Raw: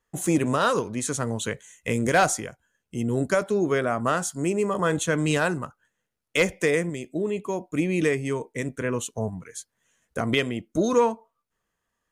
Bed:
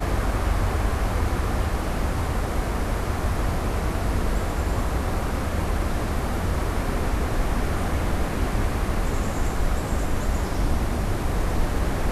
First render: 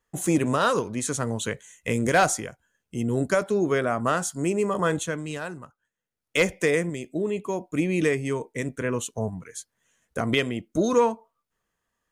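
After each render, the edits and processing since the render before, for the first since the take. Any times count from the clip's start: 4.87–6.38 s: dip -10 dB, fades 0.36 s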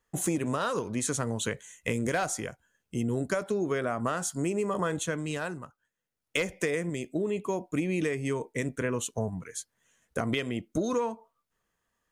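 compression 10:1, threshold -25 dBFS, peak gain reduction 10.5 dB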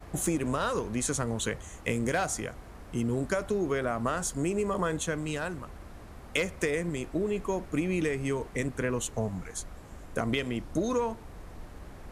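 add bed -21.5 dB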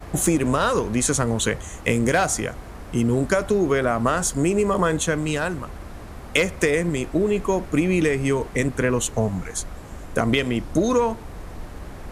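trim +9 dB

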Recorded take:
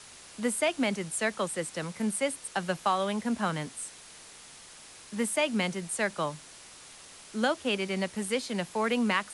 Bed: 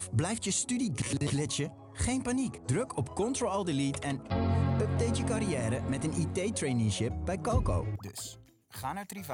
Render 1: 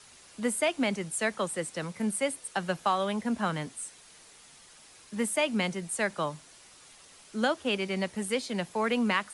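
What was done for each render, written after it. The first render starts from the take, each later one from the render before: noise reduction 6 dB, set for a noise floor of -50 dBFS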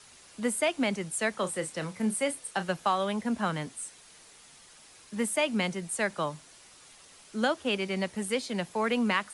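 1.35–2.69 s: doubling 32 ms -11 dB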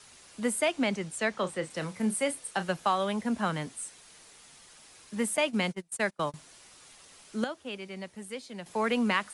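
0.71–1.69 s: low-pass 9.6 kHz -> 5 kHz; 5.37–6.34 s: gate -34 dBFS, range -29 dB; 7.44–8.66 s: gain -9.5 dB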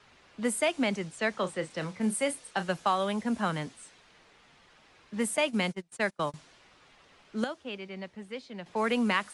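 level-controlled noise filter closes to 2.6 kHz, open at -25 dBFS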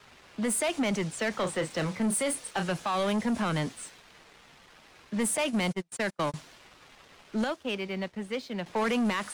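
peak limiter -22.5 dBFS, peak gain reduction 8.5 dB; waveshaping leveller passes 2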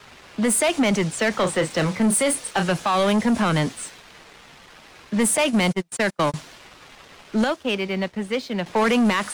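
trim +8.5 dB

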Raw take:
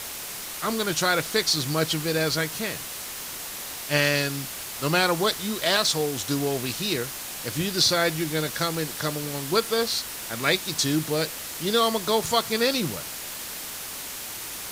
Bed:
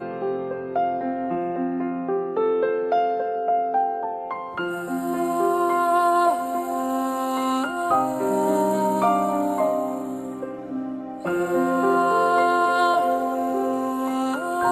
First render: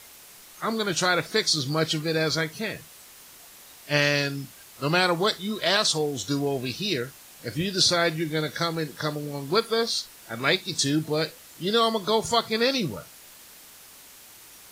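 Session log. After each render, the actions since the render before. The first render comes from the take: noise print and reduce 13 dB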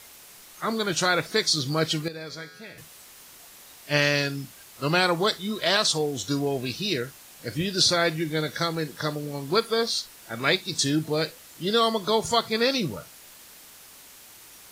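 2.08–2.78 s: feedback comb 86 Hz, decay 2 s, mix 80%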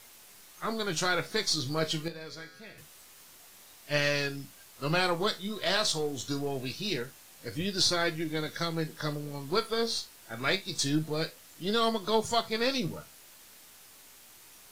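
partial rectifier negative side -3 dB; flange 0.25 Hz, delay 8.2 ms, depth 9.9 ms, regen +59%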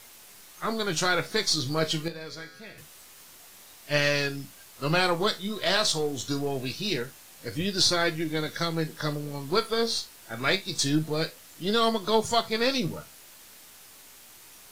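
trim +3.5 dB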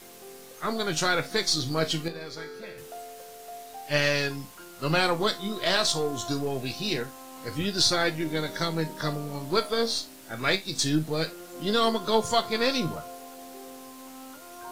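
add bed -21 dB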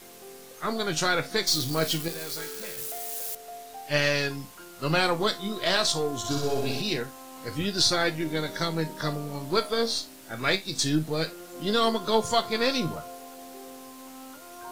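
1.47–3.35 s: zero-crossing glitches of -27 dBFS; 6.18–6.82 s: flutter echo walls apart 10.7 m, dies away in 1.2 s

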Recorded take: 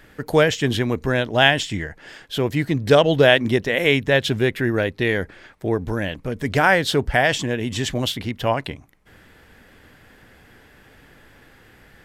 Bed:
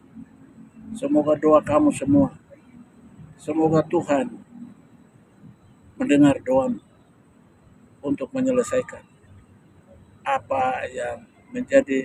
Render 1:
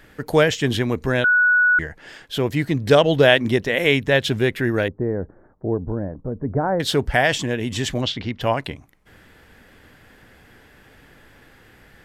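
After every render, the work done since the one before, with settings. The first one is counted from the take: 1.24–1.79 s: bleep 1.47 kHz -12.5 dBFS; 4.88–6.80 s: Gaussian low-pass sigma 8.8 samples; 8.01–8.41 s: low-pass 5.6 kHz 24 dB/octave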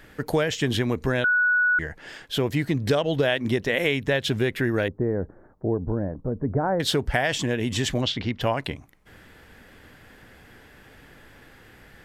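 compression, threshold -19 dBFS, peak gain reduction 10 dB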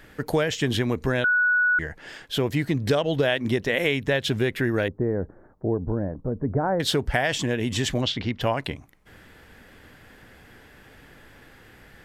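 no audible change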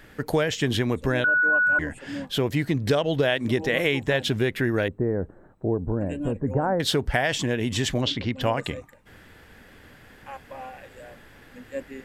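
add bed -17 dB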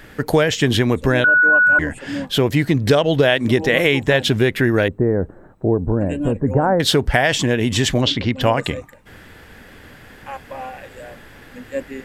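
trim +7.5 dB; peak limiter -2 dBFS, peak gain reduction 1 dB

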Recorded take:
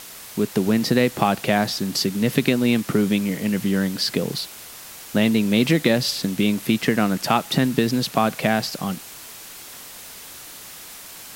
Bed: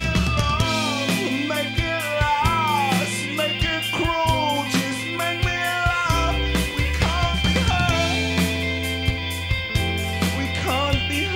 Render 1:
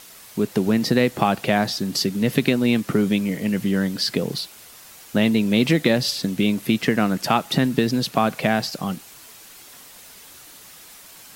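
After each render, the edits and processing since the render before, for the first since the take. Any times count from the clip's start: noise reduction 6 dB, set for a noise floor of -40 dBFS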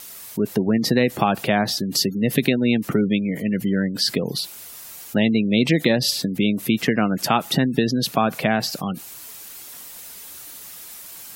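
spectral gate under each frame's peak -30 dB strong; treble shelf 8.4 kHz +10 dB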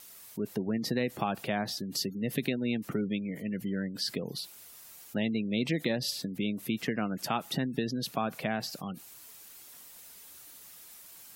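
trim -12 dB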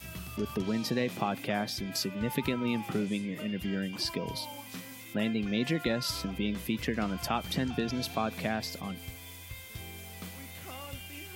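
add bed -22 dB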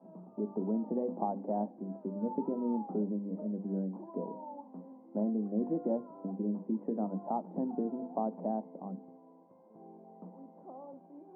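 Chebyshev band-pass 190–920 Hz, order 4; hum notches 50/100/150/200/250/300/350/400/450/500 Hz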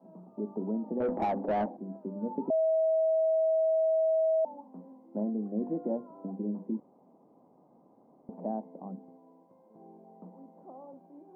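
1.00–1.77 s: overdrive pedal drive 22 dB, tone 1 kHz, clips at -19.5 dBFS; 2.50–4.45 s: bleep 642 Hz -23 dBFS; 6.80–8.29 s: room tone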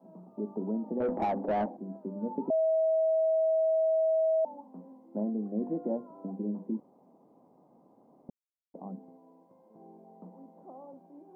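8.30–8.74 s: mute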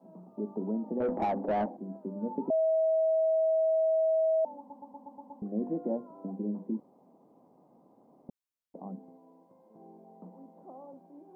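4.58 s: stutter in place 0.12 s, 7 plays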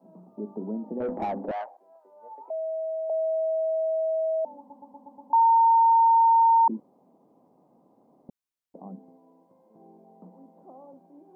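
1.51–3.10 s: high-pass 690 Hz 24 dB/octave; 5.33–6.68 s: bleep 914 Hz -15 dBFS

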